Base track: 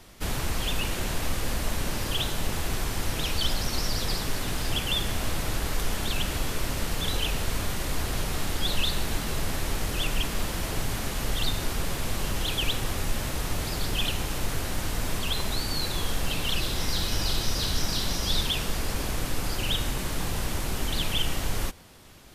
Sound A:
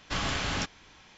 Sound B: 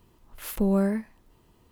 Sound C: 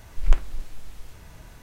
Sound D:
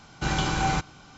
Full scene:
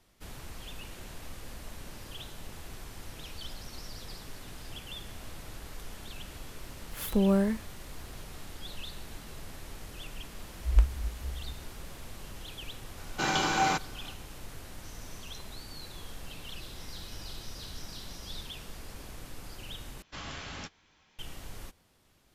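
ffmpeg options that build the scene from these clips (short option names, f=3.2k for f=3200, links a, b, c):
-filter_complex "[1:a]asplit=2[a][b];[0:a]volume=-15.5dB[c];[3:a]afreqshift=-70[d];[4:a]highpass=260[e];[a]bandpass=f=6k:t=q:w=11:csg=0[f];[b]asplit=2[g][h];[h]adelay=13,volume=-11.5dB[i];[g][i]amix=inputs=2:normalize=0[j];[c]asplit=2[k][l];[k]atrim=end=20.024[m];[j]atrim=end=1.17,asetpts=PTS-STARTPTS,volume=-11dB[n];[l]atrim=start=21.186[o];[2:a]atrim=end=1.71,asetpts=PTS-STARTPTS,volume=-1.5dB,afade=t=in:d=0.004:c=hsin,afade=t=out:st=1.706:d=0.004:c=hsin,adelay=6550[p];[d]atrim=end=1.62,asetpts=PTS-STARTPTS,volume=-7.5dB,afade=t=in:d=0.004:c=hsin,afade=t=out:st=1.616:d=0.004:c=hsin,adelay=10460[q];[e]atrim=end=1.17,asetpts=PTS-STARTPTS,afade=t=in:d=0.004:c=hsin,afade=t=out:st=1.166:d=0.004:c=hsin,adelay=12970[r];[f]atrim=end=1.17,asetpts=PTS-STARTPTS,volume=-7.5dB,afade=t=in:d=0.004:c=hsin,afade=t=out:st=1.166:d=0.004:c=hsin,adelay=14730[s];[m][n]acrossfade=d=0.004:c1=hsin:c2=hsin[t];[t][o]acrossfade=d=0.004:c1=hsin:c2=hsin[u];[u][p][q][r][s]amix=inputs=5:normalize=0"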